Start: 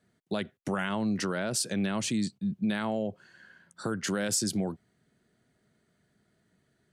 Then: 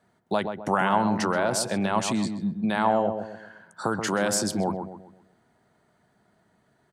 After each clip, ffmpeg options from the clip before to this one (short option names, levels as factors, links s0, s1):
-filter_complex "[0:a]equalizer=f=890:w=1.3:g=14,asplit=2[s0][s1];[s1]adelay=130,lowpass=f=1300:p=1,volume=0.501,asplit=2[s2][s3];[s3]adelay=130,lowpass=f=1300:p=1,volume=0.41,asplit=2[s4][s5];[s5]adelay=130,lowpass=f=1300:p=1,volume=0.41,asplit=2[s6][s7];[s7]adelay=130,lowpass=f=1300:p=1,volume=0.41,asplit=2[s8][s9];[s9]adelay=130,lowpass=f=1300:p=1,volume=0.41[s10];[s0][s2][s4][s6][s8][s10]amix=inputs=6:normalize=0,volume=1.19"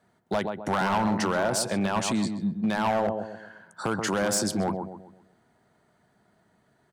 -af "volume=9.44,asoftclip=hard,volume=0.106"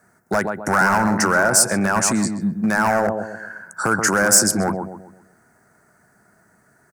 -af "firequalizer=gain_entry='entry(1000,0);entry(1500,10);entry(3200,-22);entry(5100,-1)':delay=0.05:min_phase=1,aexciter=amount=2.5:drive=3.5:freq=2400,volume=2"